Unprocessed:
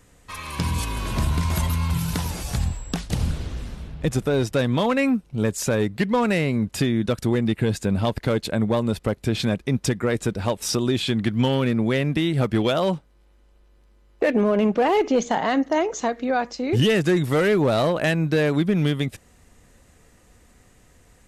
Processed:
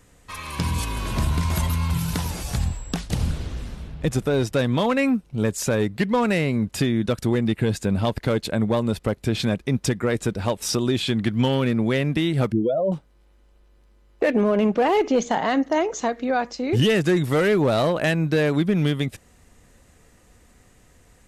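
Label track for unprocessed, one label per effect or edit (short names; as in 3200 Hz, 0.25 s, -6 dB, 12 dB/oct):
12.520000	12.920000	spectral contrast raised exponent 2.8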